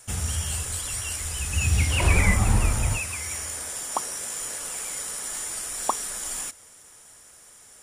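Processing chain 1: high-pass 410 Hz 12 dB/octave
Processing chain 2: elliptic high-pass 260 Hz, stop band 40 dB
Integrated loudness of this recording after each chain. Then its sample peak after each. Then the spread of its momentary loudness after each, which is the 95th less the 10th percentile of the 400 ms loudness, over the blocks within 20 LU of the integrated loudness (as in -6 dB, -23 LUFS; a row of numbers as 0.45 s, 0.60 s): -28.0 LUFS, -29.0 LUFS; -10.0 dBFS, -9.5 dBFS; 22 LU, 23 LU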